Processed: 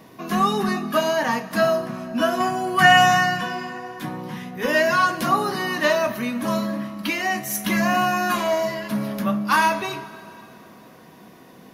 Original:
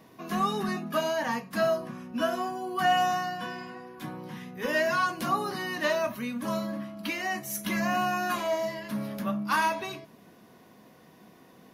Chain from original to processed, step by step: 2.40–3.41 s: graphic EQ 125/2000/8000 Hz +11/+10/+7 dB; plate-style reverb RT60 3.2 s, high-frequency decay 0.85×, DRR 14 dB; trim +7.5 dB

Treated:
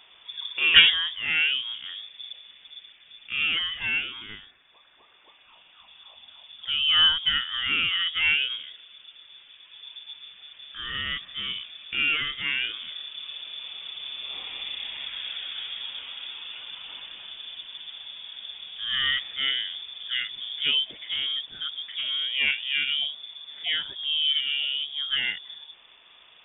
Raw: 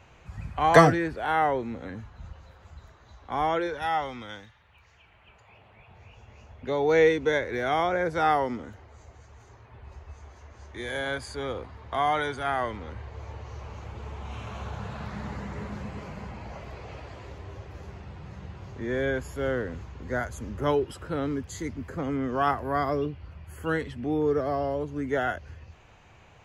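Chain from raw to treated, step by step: 18.93–19.51 s: peaking EQ 1.4 kHz +6.5 dB 1.3 oct; frequency inversion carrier 3.5 kHz

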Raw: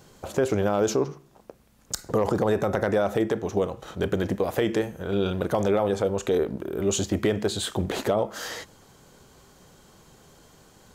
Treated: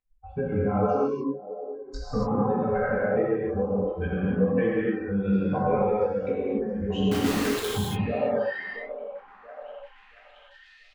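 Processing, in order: expander on every frequency bin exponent 3; low-pass 2.6 kHz 24 dB/octave; bass shelf 320 Hz +11 dB; hum notches 50/100/150/200/250/300/350/400/450 Hz; comb 3.9 ms, depth 69%; reverb removal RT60 0.61 s; in parallel at +1.5 dB: peak limiter -25 dBFS, peak gain reduction 13.5 dB; on the sum: compression 4:1, threshold -33 dBFS, peak gain reduction 15.5 dB; chorus 2.4 Hz, delay 16.5 ms, depth 5.2 ms; 7.04–7.68 s: word length cut 6-bit, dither none; on a send: repeats whose band climbs or falls 679 ms, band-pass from 480 Hz, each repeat 0.7 oct, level -10 dB; on the sum: gated-style reverb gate 310 ms flat, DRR -7 dB; trim +5.5 dB

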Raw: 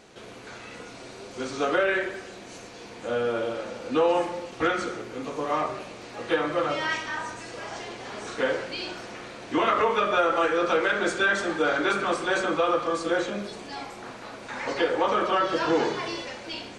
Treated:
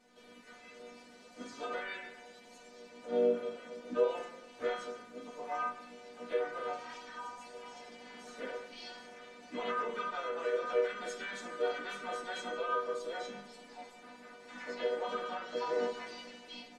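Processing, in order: inharmonic resonator 240 Hz, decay 0.32 s, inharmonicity 0.002; harmony voices -4 st -12 dB, +4 st -10 dB

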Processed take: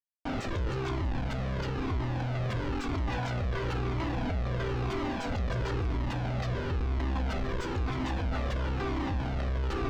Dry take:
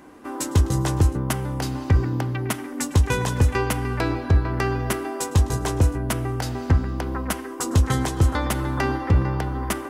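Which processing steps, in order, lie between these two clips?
treble shelf 3.6 kHz +8 dB; in parallel at +2.5 dB: compression 6:1, threshold -25 dBFS, peak gain reduction 12 dB; on the sum: Schmitt trigger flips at -23.5 dBFS; distance through air 200 m; on a send at -10.5 dB: reverberation, pre-delay 3 ms; on the sum: Shepard-style flanger falling 1 Hz; trim -8.5 dB

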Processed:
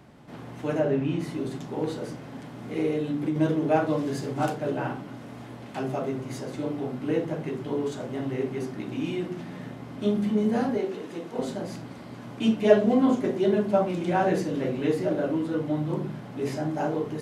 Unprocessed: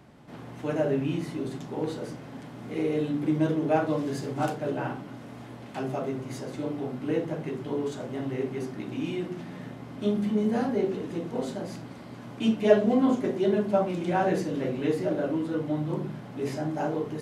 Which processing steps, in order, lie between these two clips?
0.78–1.19 s: treble shelf 7.5 kHz -> 5.4 kHz -11 dB; 2.90–3.36 s: compression, threshold -25 dBFS, peak gain reduction 5 dB; 10.77–11.39 s: high-pass 450 Hz 6 dB/octave; trim +1.5 dB

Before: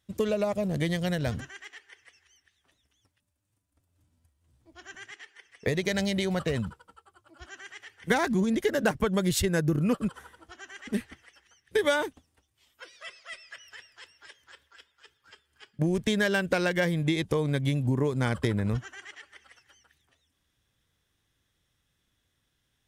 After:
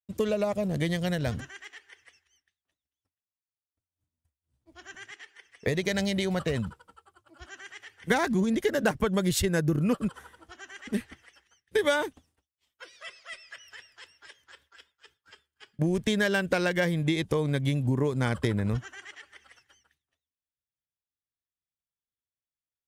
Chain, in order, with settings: expander -57 dBFS

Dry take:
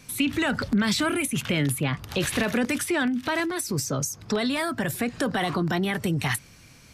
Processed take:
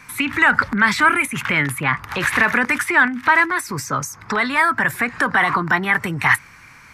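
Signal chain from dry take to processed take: high-order bell 1.4 kHz +15 dB

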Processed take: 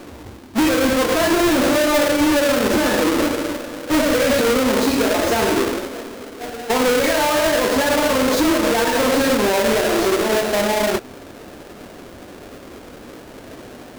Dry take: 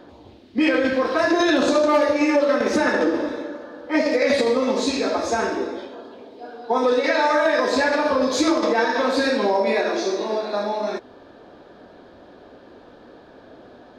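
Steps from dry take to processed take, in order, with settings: square wave that keeps the level; peak limiter -16.5 dBFS, peak gain reduction 8.5 dB; bass shelf 120 Hz +4.5 dB; trim +3 dB

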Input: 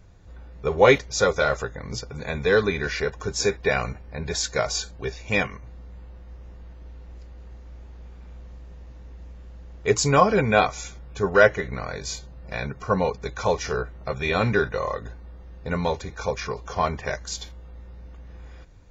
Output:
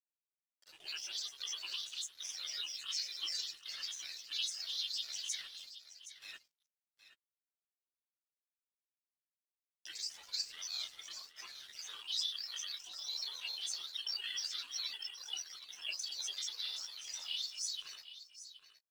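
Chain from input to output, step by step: chunks repeated in reverse 486 ms, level -3 dB; gate -35 dBFS, range -8 dB; tilt EQ +4.5 dB/octave; compression 6:1, threshold -28 dBFS, peak gain reduction 18 dB; band-pass filter 4.2 kHz, Q 15; Schroeder reverb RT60 0.35 s, combs from 25 ms, DRR -1.5 dB; crossover distortion -59.5 dBFS; granulator, grains 20 per s, spray 35 ms, pitch spread up and down by 7 st; delay 770 ms -13 dB; trim +5 dB

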